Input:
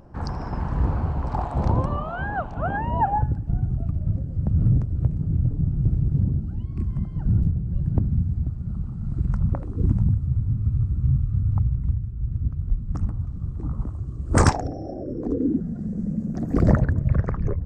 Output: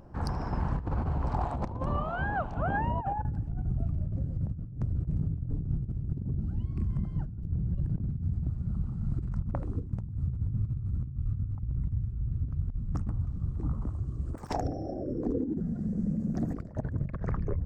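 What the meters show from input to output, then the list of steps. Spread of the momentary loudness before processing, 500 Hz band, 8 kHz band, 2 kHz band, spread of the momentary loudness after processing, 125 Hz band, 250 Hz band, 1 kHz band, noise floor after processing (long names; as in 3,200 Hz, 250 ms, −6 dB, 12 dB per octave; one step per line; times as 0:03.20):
9 LU, −7.0 dB, can't be measured, −6.0 dB, 4 LU, −8.5 dB, −7.5 dB, −7.0 dB, −39 dBFS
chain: stylus tracing distortion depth 0.13 ms
compressor whose output falls as the input rises −24 dBFS, ratio −0.5
level −5.5 dB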